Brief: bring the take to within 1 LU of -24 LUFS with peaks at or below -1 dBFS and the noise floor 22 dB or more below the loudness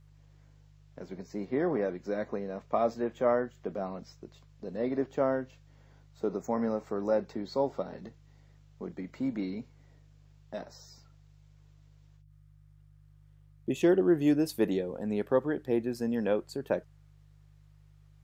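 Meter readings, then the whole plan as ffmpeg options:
hum 50 Hz; harmonics up to 150 Hz; hum level -56 dBFS; loudness -31.5 LUFS; peak -12.5 dBFS; loudness target -24.0 LUFS
-> -af "bandreject=f=50:t=h:w=4,bandreject=f=100:t=h:w=4,bandreject=f=150:t=h:w=4"
-af "volume=7.5dB"

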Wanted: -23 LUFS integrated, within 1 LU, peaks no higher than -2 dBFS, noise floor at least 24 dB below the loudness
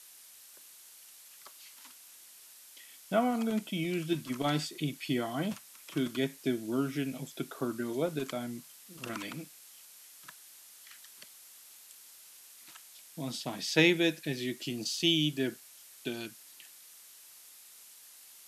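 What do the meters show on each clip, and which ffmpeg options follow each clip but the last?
noise floor -55 dBFS; noise floor target -57 dBFS; loudness -32.5 LUFS; peak -10.5 dBFS; loudness target -23.0 LUFS
-> -af "afftdn=nr=6:nf=-55"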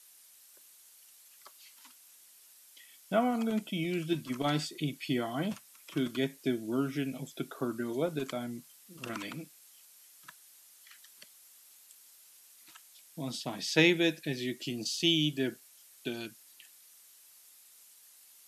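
noise floor -59 dBFS; loudness -32.5 LUFS; peak -10.5 dBFS; loudness target -23.0 LUFS
-> -af "volume=9.5dB,alimiter=limit=-2dB:level=0:latency=1"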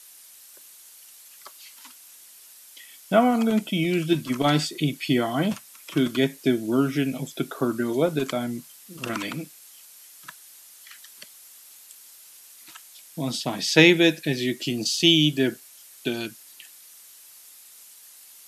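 loudness -23.0 LUFS; peak -2.0 dBFS; noise floor -49 dBFS

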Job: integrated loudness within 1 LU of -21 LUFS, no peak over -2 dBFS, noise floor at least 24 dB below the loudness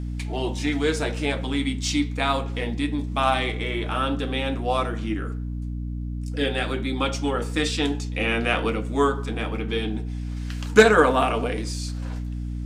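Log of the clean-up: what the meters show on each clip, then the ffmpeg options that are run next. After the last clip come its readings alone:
hum 60 Hz; harmonics up to 300 Hz; hum level -27 dBFS; loudness -24.5 LUFS; peak -3.5 dBFS; loudness target -21.0 LUFS
-> -af "bandreject=f=60:t=h:w=6,bandreject=f=120:t=h:w=6,bandreject=f=180:t=h:w=6,bandreject=f=240:t=h:w=6,bandreject=f=300:t=h:w=6"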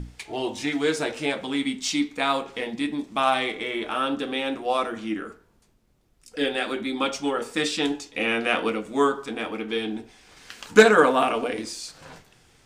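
hum none; loudness -24.5 LUFS; peak -3.5 dBFS; loudness target -21.0 LUFS
-> -af "volume=3.5dB,alimiter=limit=-2dB:level=0:latency=1"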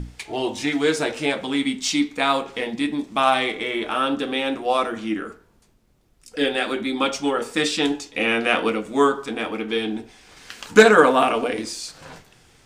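loudness -21.5 LUFS; peak -2.0 dBFS; noise floor -58 dBFS

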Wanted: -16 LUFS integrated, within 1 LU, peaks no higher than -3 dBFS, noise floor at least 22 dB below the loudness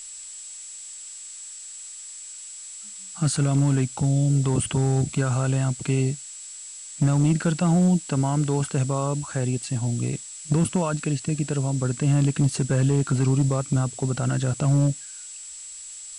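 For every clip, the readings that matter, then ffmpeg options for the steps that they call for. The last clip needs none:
steady tone 7700 Hz; tone level -38 dBFS; noise floor -40 dBFS; noise floor target -46 dBFS; loudness -23.5 LUFS; peak -12.0 dBFS; loudness target -16.0 LUFS
-> -af "bandreject=f=7.7k:w=30"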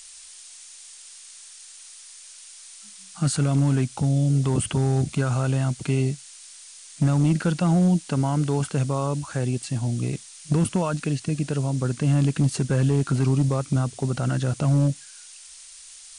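steady tone none; noise floor -45 dBFS; noise floor target -46 dBFS
-> -af "afftdn=nr=6:nf=-45"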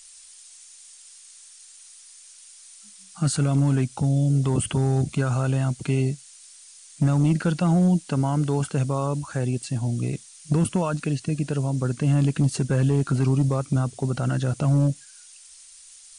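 noise floor -48 dBFS; loudness -23.5 LUFS; peak -12.5 dBFS; loudness target -16.0 LUFS
-> -af "volume=7.5dB"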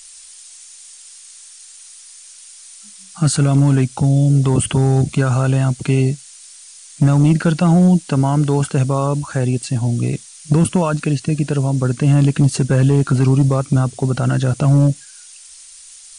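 loudness -16.0 LUFS; peak -5.0 dBFS; noise floor -41 dBFS

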